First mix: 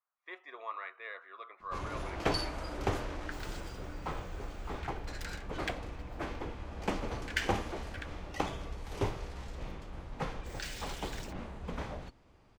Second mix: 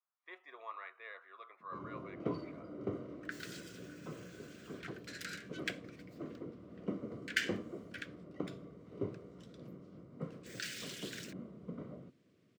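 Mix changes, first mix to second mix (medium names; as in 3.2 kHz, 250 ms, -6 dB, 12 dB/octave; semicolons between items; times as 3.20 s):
speech -5.5 dB; first sound: add boxcar filter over 52 samples; master: add high-pass 140 Hz 24 dB/octave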